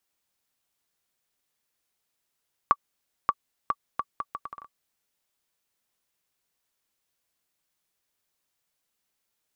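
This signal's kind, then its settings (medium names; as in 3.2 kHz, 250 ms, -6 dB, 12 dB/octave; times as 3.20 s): bouncing ball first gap 0.58 s, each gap 0.71, 1.15 kHz, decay 48 ms -7 dBFS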